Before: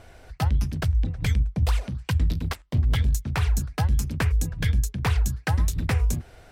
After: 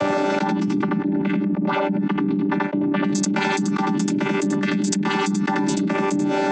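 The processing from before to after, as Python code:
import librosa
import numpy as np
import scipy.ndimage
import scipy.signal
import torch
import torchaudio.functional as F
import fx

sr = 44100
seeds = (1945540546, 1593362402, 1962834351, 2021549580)

y = fx.chord_vocoder(x, sr, chord='bare fifth', root=55)
y = fx.lowpass(y, sr, hz=2000.0, slope=12, at=(0.8, 3.04))
y = y + 10.0 ** (-7.5 / 20.0) * np.pad(y, (int(84 * sr / 1000.0), 0))[:len(y)]
y = fx.env_flatten(y, sr, amount_pct=100)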